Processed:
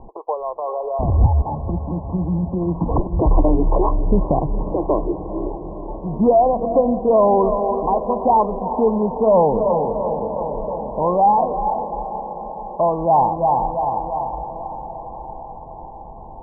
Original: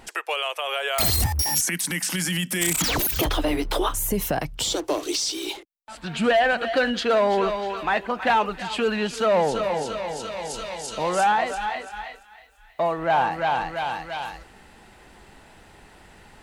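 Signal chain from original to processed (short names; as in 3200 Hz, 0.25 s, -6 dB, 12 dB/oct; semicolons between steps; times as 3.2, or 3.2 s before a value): Chebyshev low-pass 1100 Hz, order 10; low shelf 69 Hz +10 dB; diffused feedback echo 0.46 s, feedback 72%, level -12 dB; gain +6.5 dB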